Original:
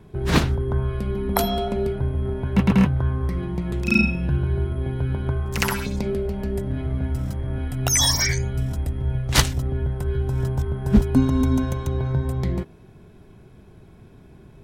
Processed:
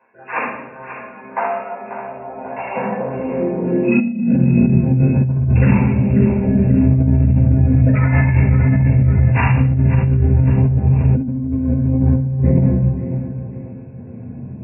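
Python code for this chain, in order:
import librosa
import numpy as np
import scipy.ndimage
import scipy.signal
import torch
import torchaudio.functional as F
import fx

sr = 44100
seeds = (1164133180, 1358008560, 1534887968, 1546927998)

p1 = fx.spec_dropout(x, sr, seeds[0], share_pct=37)
p2 = fx.peak_eq(p1, sr, hz=120.0, db=5.5, octaves=0.37)
p3 = fx.small_body(p2, sr, hz=(240.0, 490.0), ring_ms=40, db=12)
p4 = np.repeat(p3[::6], 6)[:len(p3)]
p5 = fx.brickwall_lowpass(p4, sr, high_hz=2800.0)
p6 = fx.peak_eq(p5, sr, hz=1300.0, db=-8.5, octaves=0.59)
p7 = p6 + fx.echo_thinned(p6, sr, ms=540, feedback_pct=45, hz=220.0, wet_db=-11, dry=0)
p8 = fx.room_shoebox(p7, sr, seeds[1], volume_m3=330.0, walls='mixed', distance_m=5.0)
p9 = fx.filter_sweep_highpass(p8, sr, from_hz=1100.0, to_hz=91.0, start_s=1.94, end_s=5.64, q=2.0)
p10 = fx.over_compress(p9, sr, threshold_db=-4.0, ratio=-1.0)
y = p10 * librosa.db_to_amplitude(-9.5)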